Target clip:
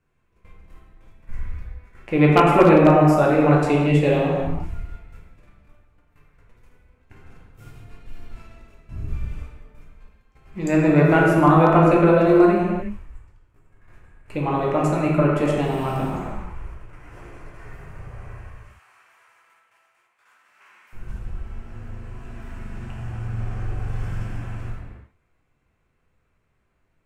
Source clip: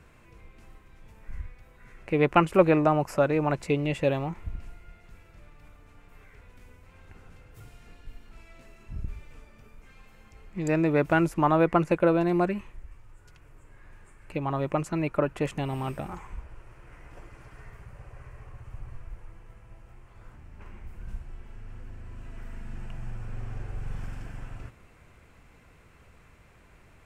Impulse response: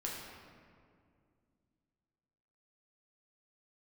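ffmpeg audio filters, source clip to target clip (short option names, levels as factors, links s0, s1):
-filter_complex "[0:a]asettb=1/sr,asplit=3[s0][s1][s2];[s0]atrim=end=15.634[s3];[s1]atrim=start=15.63:end=16.1,asetpts=PTS-STARTPTS,afade=t=in:d=0.004:c=qsin,afade=t=out:st=0.466:d=0.004:c=qsin,aeval=exprs='val(0)+0.5*0.00447*sgn(val(0))':c=same[s4];[s2]atrim=start=16.096[s5];[s3][s4]acrossfade=d=0.004:c1=hsin:c2=qsin[s6];[s6][s5]acrossfade=d=0.004:c1=qsin:c2=hsin,agate=range=0.0794:threshold=0.00447:ratio=16:detection=peak,asettb=1/sr,asplit=3[s7][s8][s9];[s7]atrim=end=18.414[s10];[s8]atrim=start=18.41:end=20.93,asetpts=PTS-STARTPTS,afade=t=in:d=0.004:c=qsin,afade=t=out:st=2.516:d=0.004:c=qsin,highpass=1400[s11];[s9]atrim=start=20.926[s12];[s10][s11]acrossfade=d=0.004:c1=hsin:c2=qsin[s13];[s13][s12]acrossfade=d=0.004:c1=qsin:c2=hsin[s14];[1:a]atrim=start_sample=2205,afade=t=out:st=0.35:d=0.01,atrim=end_sample=15876,asetrate=35280,aresample=44100[s15];[s14][s15]afir=irnorm=-1:irlink=0,aeval=exprs='0.376*(abs(mod(val(0)/0.376+3,4)-2)-1)':c=same,volume=1.78"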